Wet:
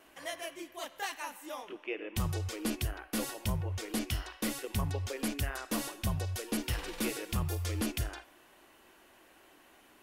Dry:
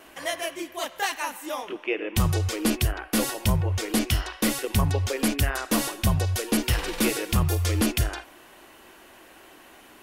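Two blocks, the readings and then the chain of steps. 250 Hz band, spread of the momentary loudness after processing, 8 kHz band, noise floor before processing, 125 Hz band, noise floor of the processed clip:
-10.0 dB, 8 LU, -10.0 dB, -51 dBFS, -10.5 dB, -61 dBFS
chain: resonator 290 Hz, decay 0.67 s, mix 40%; gain -6 dB

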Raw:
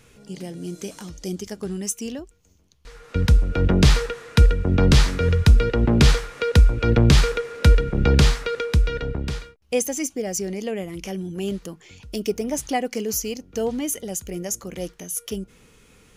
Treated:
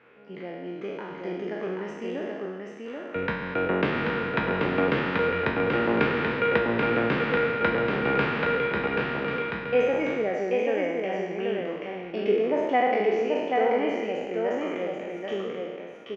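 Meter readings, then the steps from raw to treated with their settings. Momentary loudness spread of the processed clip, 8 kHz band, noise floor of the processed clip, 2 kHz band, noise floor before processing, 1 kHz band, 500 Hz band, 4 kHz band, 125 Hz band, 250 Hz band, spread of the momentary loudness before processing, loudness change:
12 LU, under -30 dB, -39 dBFS, +3.0 dB, -56 dBFS, +4.5 dB, +2.0 dB, -9.5 dB, -16.0 dB, -4.0 dB, 16 LU, -5.0 dB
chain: spectral trails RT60 1.55 s; LPF 2300 Hz 24 dB/oct; compressor, threshold -13 dBFS, peak gain reduction 7.5 dB; HPF 350 Hz 12 dB/oct; echo 0.783 s -3.5 dB

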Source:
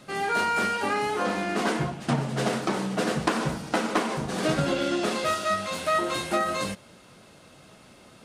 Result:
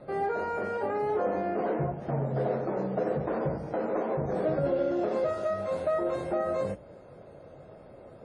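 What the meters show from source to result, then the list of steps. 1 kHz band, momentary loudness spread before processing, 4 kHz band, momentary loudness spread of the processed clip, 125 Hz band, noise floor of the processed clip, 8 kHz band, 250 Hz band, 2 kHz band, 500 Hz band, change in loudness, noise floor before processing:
-6.0 dB, 3 LU, under -20 dB, 18 LU, -2.5 dB, -50 dBFS, under -20 dB, -5.0 dB, -12.5 dB, +1.5 dB, -3.5 dB, -52 dBFS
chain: in parallel at -3 dB: compressor 5:1, threshold -38 dBFS, peak gain reduction 17 dB; on the sum: notches 60/120/180/240/300 Hz; limiter -18.5 dBFS, peak gain reduction 8.5 dB; EQ curve 130 Hz 0 dB, 220 Hz -7 dB, 550 Hz +5 dB, 1100 Hz -9 dB, 1900 Hz -12 dB, 2900 Hz -22 dB, 9600 Hz -19 dB; WMA 32 kbps 48000 Hz

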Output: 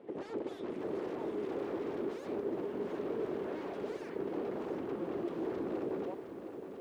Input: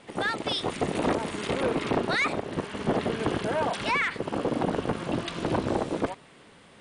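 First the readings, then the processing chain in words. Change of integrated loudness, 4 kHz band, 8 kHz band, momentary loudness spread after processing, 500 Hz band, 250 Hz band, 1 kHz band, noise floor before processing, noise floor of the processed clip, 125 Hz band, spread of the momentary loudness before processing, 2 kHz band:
-10.5 dB, -24.0 dB, under -20 dB, 4 LU, -7.0 dB, -8.5 dB, -15.5 dB, -53 dBFS, -47 dBFS, -17.0 dB, 5 LU, -21.5 dB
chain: wavefolder -30.5 dBFS; band-pass 380 Hz, Q 2.8; lo-fi delay 0.715 s, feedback 55%, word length 12-bit, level -9 dB; gain +6 dB

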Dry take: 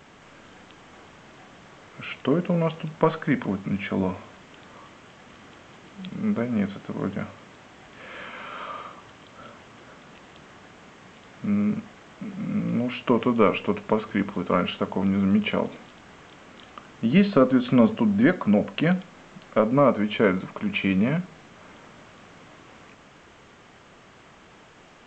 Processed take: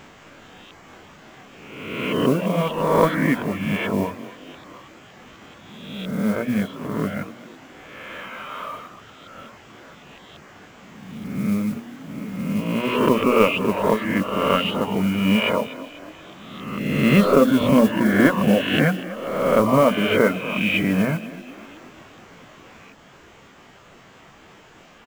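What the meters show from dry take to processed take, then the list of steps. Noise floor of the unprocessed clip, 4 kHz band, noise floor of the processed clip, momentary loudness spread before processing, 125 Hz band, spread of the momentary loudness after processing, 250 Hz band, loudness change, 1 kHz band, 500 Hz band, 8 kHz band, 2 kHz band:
-51 dBFS, +7.5 dB, -49 dBFS, 17 LU, +3.0 dB, 20 LU, +2.5 dB, +3.5 dB, +5.5 dB, +4.5 dB, n/a, +6.5 dB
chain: spectral swells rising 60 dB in 1.41 s; de-hum 59.38 Hz, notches 35; reverb removal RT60 0.87 s; modulation noise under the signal 24 dB; frequency-shifting echo 0.243 s, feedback 53%, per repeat +31 Hz, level -16 dB; gain +2.5 dB

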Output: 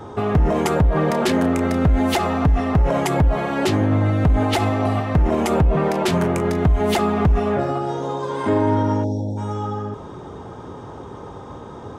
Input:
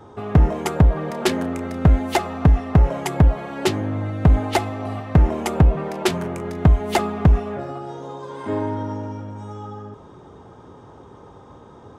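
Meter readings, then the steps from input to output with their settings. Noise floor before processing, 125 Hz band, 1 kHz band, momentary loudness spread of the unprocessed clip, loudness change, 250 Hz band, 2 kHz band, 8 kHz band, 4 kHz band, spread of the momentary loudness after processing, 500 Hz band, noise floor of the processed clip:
-45 dBFS, -0.5 dB, +4.0 dB, 15 LU, +1.0 dB, +3.5 dB, +3.0 dB, +0.5 dB, +2.0 dB, 18 LU, +5.0 dB, -36 dBFS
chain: spectral delete 9.04–9.38, 910–3300 Hz; maximiser +17.5 dB; gain -9 dB

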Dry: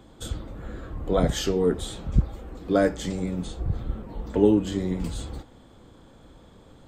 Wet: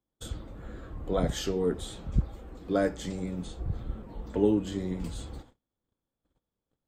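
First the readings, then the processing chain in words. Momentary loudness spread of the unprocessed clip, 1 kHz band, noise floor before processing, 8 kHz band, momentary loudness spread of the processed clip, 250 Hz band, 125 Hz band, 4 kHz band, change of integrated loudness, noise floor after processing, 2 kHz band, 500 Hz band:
16 LU, -5.5 dB, -52 dBFS, -5.5 dB, 16 LU, -5.5 dB, -5.5 dB, -5.5 dB, -5.5 dB, under -85 dBFS, -5.5 dB, -5.5 dB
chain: gate -45 dBFS, range -32 dB; gain -5.5 dB

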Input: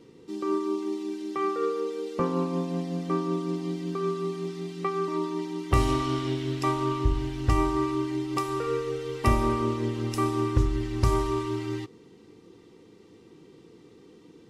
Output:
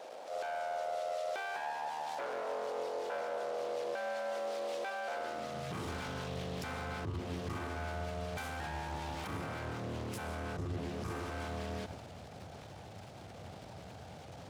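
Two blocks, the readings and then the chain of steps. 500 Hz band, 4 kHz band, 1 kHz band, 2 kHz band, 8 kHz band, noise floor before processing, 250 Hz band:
-9.0 dB, -6.5 dB, -8.0 dB, -1.5 dB, -7.5 dB, -54 dBFS, -17.0 dB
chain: full-wave rectifier; compressor 6:1, threshold -39 dBFS, peak gain reduction 20 dB; limiter -34.5 dBFS, peak gain reduction 8 dB; transient shaper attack -9 dB, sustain +7 dB; high-pass sweep 510 Hz -> 90 Hz, 5.11–5.87; gain +6.5 dB

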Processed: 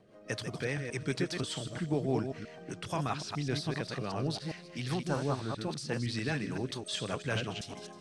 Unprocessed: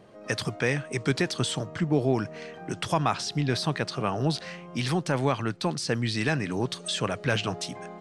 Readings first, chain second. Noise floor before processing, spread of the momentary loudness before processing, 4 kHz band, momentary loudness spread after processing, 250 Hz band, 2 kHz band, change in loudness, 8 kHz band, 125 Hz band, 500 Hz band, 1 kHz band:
-45 dBFS, 7 LU, -7.0 dB, 7 LU, -6.5 dB, -8.0 dB, -7.0 dB, -7.5 dB, -6.5 dB, -7.0 dB, -8.5 dB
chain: reverse delay 0.129 s, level -5 dB; rotary speaker horn 5 Hz; spectral repair 5.13–5.54, 1600–9600 Hz both; on a send: thin delay 0.156 s, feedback 58%, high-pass 3800 Hz, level -12.5 dB; on the sum: gain -6 dB

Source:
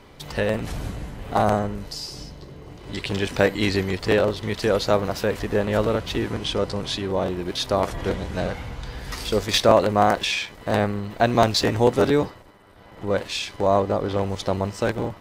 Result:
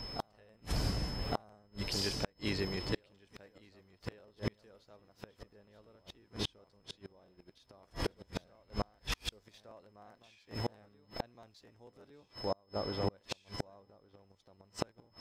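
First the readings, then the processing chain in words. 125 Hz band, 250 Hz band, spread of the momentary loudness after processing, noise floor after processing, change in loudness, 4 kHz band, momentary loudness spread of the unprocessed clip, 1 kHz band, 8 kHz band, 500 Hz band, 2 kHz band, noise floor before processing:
-15.5 dB, -18.0 dB, 22 LU, -70 dBFS, -17.0 dB, -14.0 dB, 13 LU, -21.5 dB, -15.0 dB, -22.0 dB, -19.0 dB, -46 dBFS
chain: whine 5200 Hz -42 dBFS; reverse echo 1.161 s -10 dB; flipped gate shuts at -17 dBFS, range -36 dB; gain -3.5 dB

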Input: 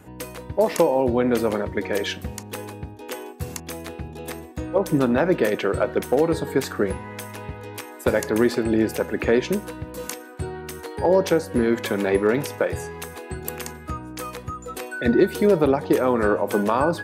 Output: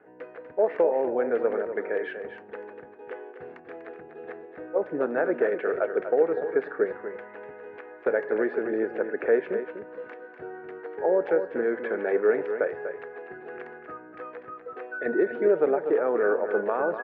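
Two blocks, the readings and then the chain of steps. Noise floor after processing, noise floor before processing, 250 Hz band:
-48 dBFS, -40 dBFS, -10.5 dB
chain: speaker cabinet 370–2000 Hz, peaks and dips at 440 Hz +9 dB, 690 Hz +4 dB, 1000 Hz -6 dB, 1600 Hz +6 dB; on a send: echo 0.245 s -9 dB; on the sum: gain -7 dB

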